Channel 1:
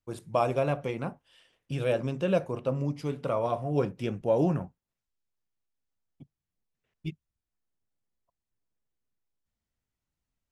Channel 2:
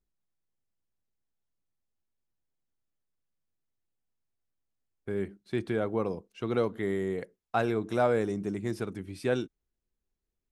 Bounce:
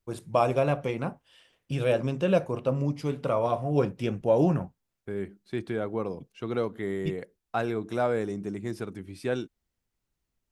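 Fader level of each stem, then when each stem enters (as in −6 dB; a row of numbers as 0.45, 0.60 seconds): +2.5, −1.0 decibels; 0.00, 0.00 seconds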